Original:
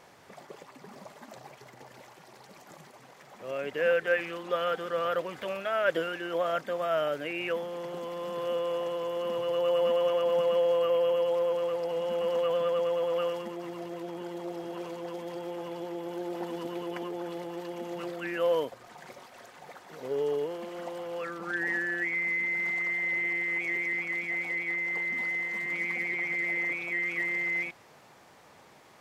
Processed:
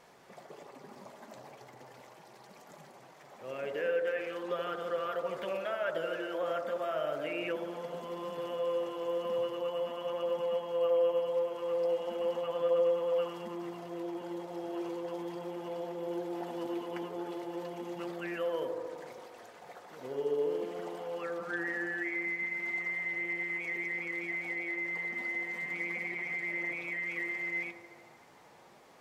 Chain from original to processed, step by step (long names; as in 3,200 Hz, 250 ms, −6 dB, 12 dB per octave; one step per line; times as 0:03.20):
downward compressor 2.5 to 1, threshold −29 dBFS, peak gain reduction 6 dB
on a send: delay with a band-pass on its return 76 ms, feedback 76%, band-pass 530 Hz, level −4 dB
on the sum: flanger 0.38 Hz, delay 4.2 ms, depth 5.8 ms, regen −55%